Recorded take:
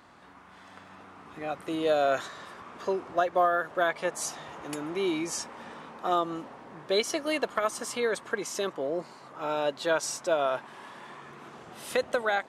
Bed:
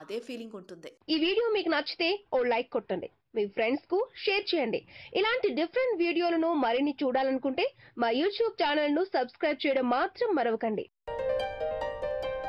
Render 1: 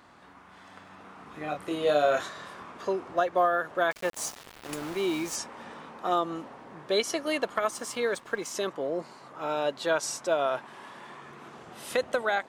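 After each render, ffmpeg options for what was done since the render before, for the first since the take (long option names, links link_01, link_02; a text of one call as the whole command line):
ffmpeg -i in.wav -filter_complex "[0:a]asettb=1/sr,asplit=3[link_01][link_02][link_03];[link_01]atrim=end=1.024[link_04];[link_02]atrim=start=1.02:end=2.72,asetpts=PTS-STARTPTS,afade=type=in:duration=0.004:curve=qsin,afade=type=out:start_time=1.696:duration=0.004:curve=qsin,asplit=2[link_05][link_06];[link_06]adelay=27,volume=-4dB[link_07];[link_05][link_07]amix=inputs=2:normalize=0,atrim=end_sample=74970[link_08];[link_03]atrim=start=2.716[link_09];[link_04][link_08]acrossfade=duration=0.004:curve1=hsin:curve2=qsin[link_10];[link_10][link_09]acrossfade=duration=0.004:curve1=qsin:curve2=hsin,asettb=1/sr,asplit=3[link_11][link_12][link_13];[link_11]atrim=end=3.914[link_14];[link_12]atrim=start=3.91:end=5.36,asetpts=PTS-STARTPTS,afade=type=in:duration=0.004:curve=qsin,afade=type=out:start_time=1.446:duration=0.004:curve=qsin,aeval=exprs='val(0)*gte(abs(val(0)),0.0141)':channel_layout=same[link_15];[link_13]atrim=start=5.356[link_16];[link_14][link_15]acrossfade=duration=0.004:curve1=hsin:curve2=qsin[link_17];[link_17][link_16]acrossfade=duration=0.004:curve1=qsin:curve2=hsin,asettb=1/sr,asplit=3[link_18][link_19][link_20];[link_18]atrim=end=7.714[link_21];[link_19]atrim=start=7.71:end=8.54,asetpts=PTS-STARTPTS,afade=type=in:duration=0.004:curve=qsin,afade=type=out:start_time=0.826:duration=0.004:curve=qsin,aeval=exprs='sgn(val(0))*max(abs(val(0))-0.00211,0)':channel_layout=same[link_22];[link_20]atrim=start=8.536[link_23];[link_21][link_22]acrossfade=duration=0.004:curve1=hsin:curve2=qsin[link_24];[link_24][link_23]acrossfade=duration=0.004:curve1=qsin:curve2=hsin" out.wav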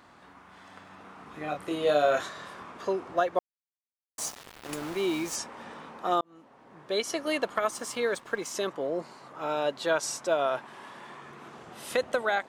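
ffmpeg -i in.wav -filter_complex "[0:a]asplit=4[link_01][link_02][link_03][link_04];[link_01]atrim=end=3.39,asetpts=PTS-STARTPTS,afade=type=out:start_time=3.386:duration=0.004:curve=hsin[link_05];[link_02]atrim=start=3.39:end=4.18,asetpts=PTS-STARTPTS,volume=0[link_06];[link_03]atrim=start=4.18:end=6.21,asetpts=PTS-STARTPTS,afade=type=in:duration=0.004:curve=hsin,afade=type=out:start_time=2.026:duration=0.004:curve=hsin[link_07];[link_04]atrim=start=6.21,asetpts=PTS-STARTPTS,afade=type=in:duration=1.07[link_08];[link_05][link_06][link_07][link_08]concat=n=4:v=0:a=1" out.wav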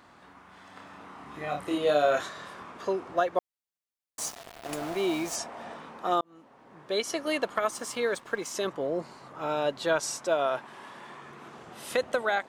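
ffmpeg -i in.wav -filter_complex "[0:a]asettb=1/sr,asplit=3[link_01][link_02][link_03];[link_01]atrim=end=0.734[link_04];[link_02]atrim=start=0.73:end=1.78,asetpts=PTS-STARTPTS,afade=type=in:duration=0.004:curve=qsin,afade=type=out:start_time=1.046:duration=0.004:curve=qsin,asplit=2[link_05][link_06];[link_06]adelay=28,volume=-2.5dB[link_07];[link_05][link_07]amix=inputs=2:normalize=0,atrim=end_sample=46305[link_08];[link_03]atrim=start=1.776[link_09];[link_04][link_08]acrossfade=duration=0.004:curve1=hsin:curve2=qsin[link_10];[link_10][link_09]acrossfade=duration=0.004:curve1=qsin:curve2=hsin,asettb=1/sr,asplit=3[link_11][link_12][link_13];[link_11]atrim=end=4.344[link_14];[link_12]atrim=start=4.34:end=5.76,asetpts=PTS-STARTPTS,afade=type=in:duration=0.004:curve=qsin,afade=type=out:start_time=1.416:duration=0.004:curve=qsin,equalizer=frequency=680:width_type=o:width=0.25:gain=13.5[link_15];[link_13]atrim=start=5.756[link_16];[link_14][link_15]acrossfade=duration=0.004:curve1=hsin:curve2=qsin[link_17];[link_17][link_16]acrossfade=duration=0.004:curve1=qsin:curve2=hsin,asettb=1/sr,asplit=3[link_18][link_19][link_20];[link_18]atrim=end=8.654[link_21];[link_19]atrim=start=8.65:end=10.04,asetpts=PTS-STARTPTS,afade=type=in:duration=0.004:curve=qsin,afade=type=out:start_time=1.386:duration=0.004:curve=qsin,lowshelf=frequency=110:gain=11.5[link_22];[link_20]atrim=start=10.036[link_23];[link_21][link_22]acrossfade=duration=0.004:curve1=hsin:curve2=qsin[link_24];[link_24][link_23]acrossfade=duration=0.004:curve1=qsin:curve2=hsin" out.wav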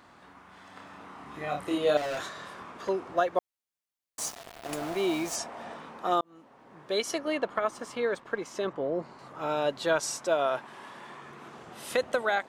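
ffmpeg -i in.wav -filter_complex "[0:a]asettb=1/sr,asplit=3[link_01][link_02][link_03];[link_01]atrim=end=1.974[link_04];[link_02]atrim=start=1.97:end=2.89,asetpts=PTS-STARTPTS,afade=type=in:duration=0.004:curve=qsin,afade=type=out:start_time=0.916:duration=0.004:curve=qsin,asoftclip=type=hard:threshold=-31dB[link_05];[link_03]atrim=start=2.886[link_06];[link_04][link_05]acrossfade=duration=0.004:curve1=hsin:curve2=qsin[link_07];[link_07][link_06]acrossfade=duration=0.004:curve1=qsin:curve2=hsin,asettb=1/sr,asplit=3[link_08][link_09][link_10];[link_08]atrim=end=7.184[link_11];[link_09]atrim=start=7.18:end=9.19,asetpts=PTS-STARTPTS,afade=type=in:duration=0.004:curve=qsin,afade=type=out:start_time=2.006:duration=0.004:curve=qsin,lowpass=frequency=2100:poles=1[link_12];[link_10]atrim=start=9.186[link_13];[link_11][link_12]acrossfade=duration=0.004:curve1=hsin:curve2=qsin[link_14];[link_14][link_13]acrossfade=duration=0.004:curve1=qsin:curve2=hsin" out.wav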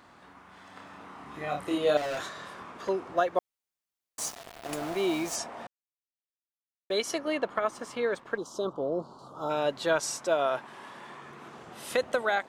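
ffmpeg -i in.wav -filter_complex "[0:a]asplit=3[link_01][link_02][link_03];[link_01]afade=type=out:start_time=8.36:duration=0.02[link_04];[link_02]asuperstop=centerf=2100:order=8:qfactor=1.1,afade=type=in:start_time=8.36:duration=0.02,afade=type=out:start_time=9.49:duration=0.02[link_05];[link_03]afade=type=in:start_time=9.49:duration=0.02[link_06];[link_04][link_05][link_06]amix=inputs=3:normalize=0,asplit=3[link_07][link_08][link_09];[link_07]atrim=end=5.67,asetpts=PTS-STARTPTS,afade=type=out:start_time=5.666:duration=0.004:curve=hsin[link_10];[link_08]atrim=start=5.67:end=6.9,asetpts=PTS-STARTPTS,volume=0[link_11];[link_09]atrim=start=6.9,asetpts=PTS-STARTPTS,afade=type=in:duration=0.004:curve=hsin[link_12];[link_10][link_11][link_12]concat=n=3:v=0:a=1" out.wav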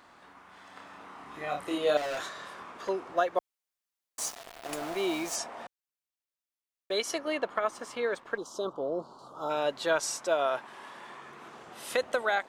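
ffmpeg -i in.wav -af "equalizer=frequency=110:width=0.46:gain=-7.5" out.wav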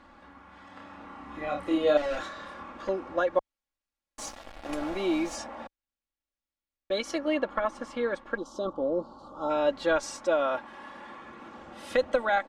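ffmpeg -i in.wav -af "aemphasis=mode=reproduction:type=bsi,aecho=1:1:3.6:0.67" out.wav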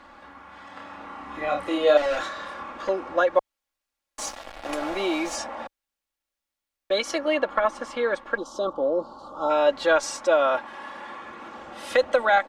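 ffmpeg -i in.wav -filter_complex "[0:a]acrossover=split=390[link_01][link_02];[link_01]alimiter=level_in=9.5dB:limit=-24dB:level=0:latency=1,volume=-9.5dB[link_03];[link_02]acontrast=74[link_04];[link_03][link_04]amix=inputs=2:normalize=0" out.wav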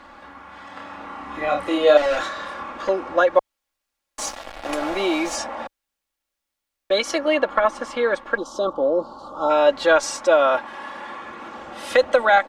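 ffmpeg -i in.wav -af "volume=4dB" out.wav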